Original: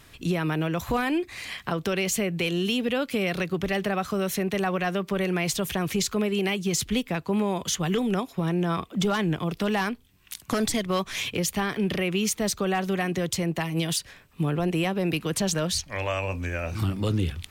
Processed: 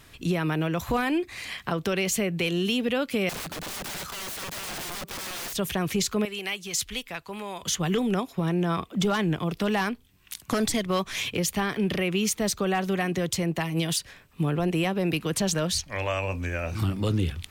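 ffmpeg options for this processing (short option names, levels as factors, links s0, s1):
-filter_complex "[0:a]asettb=1/sr,asplit=3[s0][s1][s2];[s0]atrim=end=3.294[s3];[s1]atrim=start=3.29:end=5.53,asetpts=PTS-STARTPTS,afade=t=in:d=0.004:c=qsin,afade=t=out:st=2.236:d=0.004:c=qsin,aeval=exprs='(mod(33.5*val(0)+1,2)-1)/33.5':c=same[s4];[s2]atrim=start=5.526[s5];[s3][s4]acrossfade=d=0.004:c1=hsin:c2=qsin[s6];[s6][s5]acrossfade=d=0.004:c1=qsin:c2=hsin,asettb=1/sr,asplit=3[s7][s8][s9];[s7]atrim=end=6.254[s10];[s8]atrim=start=6.25:end=7.63,asetpts=PTS-STARTPTS,afade=t=in:d=0.004:c=qsin,afade=t=out:st=1.376:d=0.004:c=qsin,equalizer=f=200:w=0.36:g=-15[s11];[s9]atrim=start=7.626[s12];[s10][s11]acrossfade=d=0.004:c1=hsin:c2=qsin[s13];[s13][s12]acrossfade=d=0.004:c1=qsin:c2=hsin"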